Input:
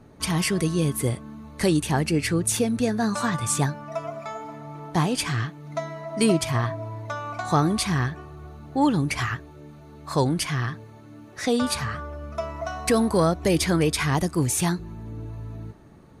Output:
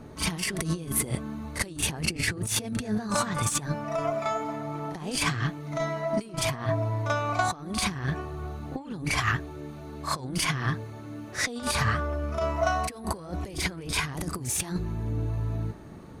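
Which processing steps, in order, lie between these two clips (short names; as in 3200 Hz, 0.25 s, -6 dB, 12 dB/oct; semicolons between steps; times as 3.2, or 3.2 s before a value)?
added harmonics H 4 -33 dB, 8 -34 dB, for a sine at -8 dBFS; negative-ratio compressor -28 dBFS, ratio -0.5; reverse echo 38 ms -9.5 dB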